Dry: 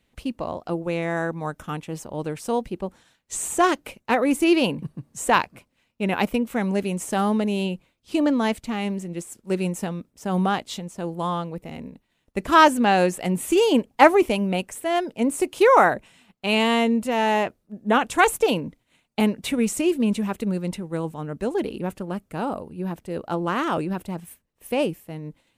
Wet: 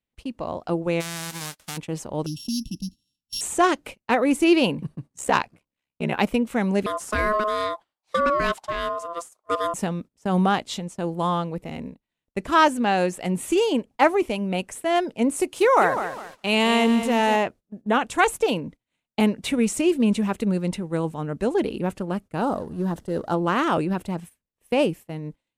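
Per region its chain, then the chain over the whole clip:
1.00–1.76 s: formants flattened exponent 0.1 + compression 4:1, threshold -30 dBFS
2.26–3.41 s: sorted samples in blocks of 8 samples + brick-wall FIR band-stop 320–2600 Hz
5.09–6.19 s: hard clipper -9 dBFS + ring modulator 33 Hz
6.86–9.74 s: de-esser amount 55% + ring modulator 850 Hz
15.36–17.36 s: treble shelf 6.3 kHz +5 dB + bit-crushed delay 203 ms, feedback 35%, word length 6-bit, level -9 dB
22.41–23.34 s: companding laws mixed up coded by mu + peaking EQ 2.4 kHz -12 dB 0.42 oct
whole clip: low-pass 11 kHz 12 dB/octave; gate -39 dBFS, range -16 dB; level rider gain up to 7 dB; trim -4.5 dB

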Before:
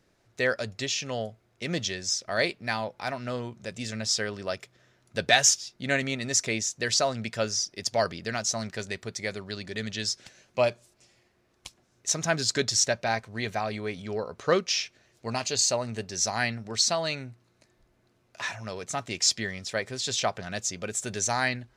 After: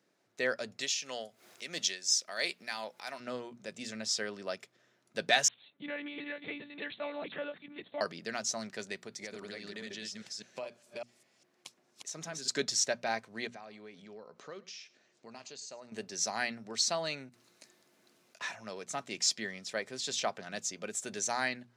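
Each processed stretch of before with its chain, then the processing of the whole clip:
0.81–3.20 s: tilt EQ +3 dB/octave + upward compressor, threshold -35 dBFS + tremolo 2.9 Hz, depth 49%
5.48–8.01 s: chunks repeated in reverse 329 ms, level -5.5 dB + compression 4:1, threshold -27 dBFS + monotone LPC vocoder at 8 kHz 290 Hz
9.01–12.48 s: chunks repeated in reverse 202 ms, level -1.5 dB + compression 5:1, threshold -32 dBFS
13.47–15.92 s: low-pass 8.3 kHz 24 dB/octave + compression 2.5:1, threshold -45 dBFS + delay 105 ms -20.5 dB
17.29–18.41 s: treble shelf 2.5 kHz +10.5 dB + compressor with a negative ratio -53 dBFS
whole clip: high-pass 160 Hz 24 dB/octave; hum notches 60/120/180/240 Hz; trim -6 dB

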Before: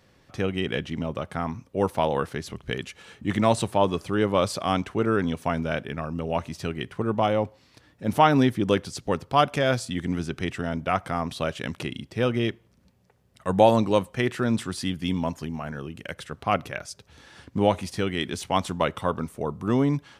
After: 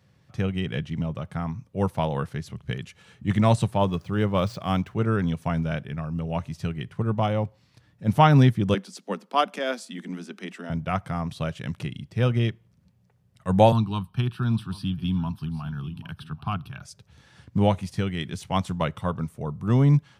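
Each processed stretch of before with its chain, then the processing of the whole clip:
3.79–4.99 s: median filter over 5 samples + hum notches 60/120 Hz
8.74–10.70 s: steep high-pass 190 Hz 96 dB/octave + band-stop 770 Hz, Q 25
13.72–16.82 s: static phaser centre 2 kHz, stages 6 + delay 789 ms -19 dB + three bands compressed up and down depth 40%
whole clip: high-pass 81 Hz; resonant low shelf 210 Hz +8.5 dB, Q 1.5; upward expansion 1.5:1, over -27 dBFS; trim +1 dB

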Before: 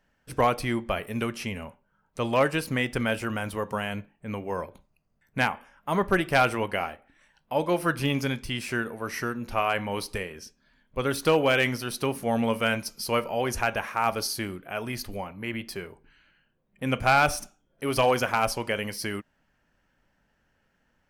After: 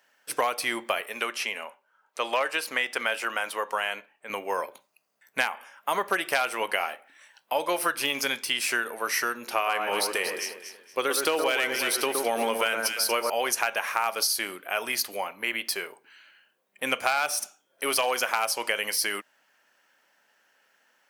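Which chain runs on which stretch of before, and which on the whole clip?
1.01–4.30 s: high-pass 460 Hz 6 dB/octave + treble shelf 5.4 kHz -9.5 dB
9.47–13.30 s: peaking EQ 350 Hz +6 dB 0.63 oct + echo whose repeats swap between lows and highs 117 ms, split 1.6 kHz, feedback 53%, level -4 dB
whole clip: high-pass 440 Hz 12 dB/octave; tilt EQ +2 dB/octave; compression 6:1, threshold -28 dBFS; trim +6 dB

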